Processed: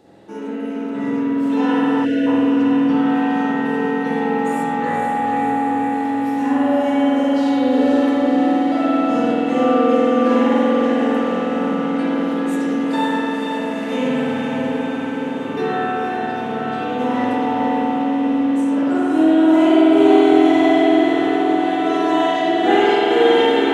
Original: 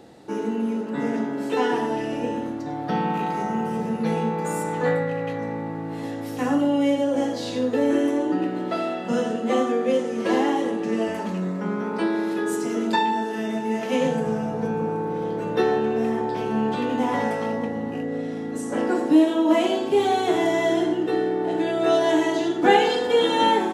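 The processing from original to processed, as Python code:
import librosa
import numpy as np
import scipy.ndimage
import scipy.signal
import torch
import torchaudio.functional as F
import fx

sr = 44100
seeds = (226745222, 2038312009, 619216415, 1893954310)

y = fx.echo_diffused(x, sr, ms=504, feedback_pct=74, wet_db=-5.5)
y = fx.rev_spring(y, sr, rt60_s=3.4, pass_ms=(47,), chirp_ms=55, drr_db=-9.0)
y = fx.spec_box(y, sr, start_s=2.05, length_s=0.22, low_hz=690.0, high_hz=1400.0, gain_db=-28)
y = y * 10.0 ** (-5.5 / 20.0)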